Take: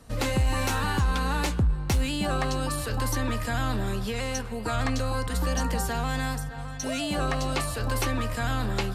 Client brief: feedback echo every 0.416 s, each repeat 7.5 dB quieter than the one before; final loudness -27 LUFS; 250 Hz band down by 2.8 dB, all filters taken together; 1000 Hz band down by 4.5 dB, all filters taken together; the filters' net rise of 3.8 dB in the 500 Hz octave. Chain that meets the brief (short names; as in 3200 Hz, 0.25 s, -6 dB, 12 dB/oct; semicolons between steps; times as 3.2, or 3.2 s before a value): bell 250 Hz -5 dB; bell 500 Hz +7.5 dB; bell 1000 Hz -8.5 dB; feedback echo 0.416 s, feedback 42%, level -7.5 dB; gain +1 dB